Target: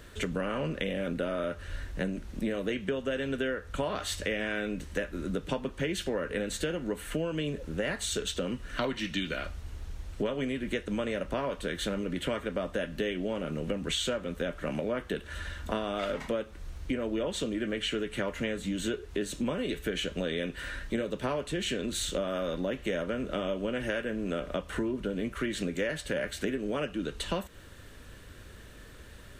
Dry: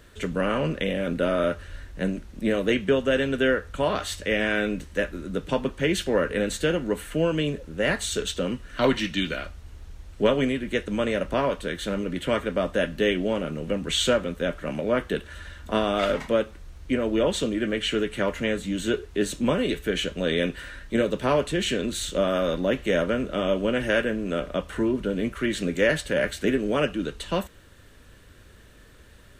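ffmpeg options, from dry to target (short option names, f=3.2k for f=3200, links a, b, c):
-af "acompressor=threshold=-31dB:ratio=6,volume=2dB"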